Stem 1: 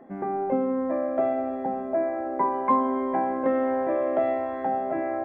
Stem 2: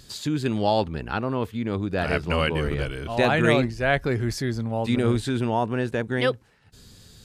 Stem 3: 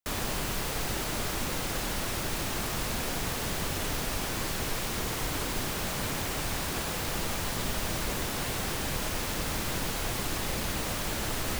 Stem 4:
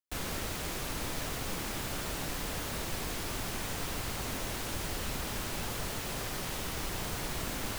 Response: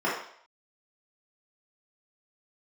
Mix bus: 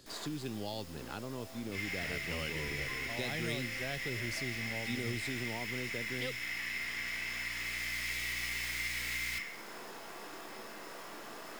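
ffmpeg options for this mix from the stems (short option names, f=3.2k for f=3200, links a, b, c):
-filter_complex "[0:a]adelay=200,volume=-19dB[a];[1:a]equalizer=f=330:t=o:w=2.4:g=12.5,lowshelf=f=420:g=-10,volume=-9dB,asplit=2[b][c];[2:a]highpass=340,acrusher=bits=4:dc=4:mix=0:aa=0.000001,volume=-14dB,asplit=2[d][e];[e]volume=-5dB[f];[3:a]highpass=f=2.1k:t=q:w=8.6,aeval=exprs='val(0)+0.00398*(sin(2*PI*60*n/s)+sin(2*PI*2*60*n/s)/2+sin(2*PI*3*60*n/s)/3+sin(2*PI*4*60*n/s)/4+sin(2*PI*5*60*n/s)/5)':c=same,adelay=1600,volume=-2dB,asplit=2[g][h];[h]volume=-7.5dB[i];[c]apad=whole_len=413867[j];[g][j]sidechaincompress=threshold=-41dB:ratio=8:attack=16:release=1390[k];[4:a]atrim=start_sample=2205[l];[f][i]amix=inputs=2:normalize=0[m];[m][l]afir=irnorm=-1:irlink=0[n];[a][b][d][k][n]amix=inputs=5:normalize=0,acrossover=split=150|3000[o][p][q];[p]acompressor=threshold=-43dB:ratio=4[r];[o][r][q]amix=inputs=3:normalize=0"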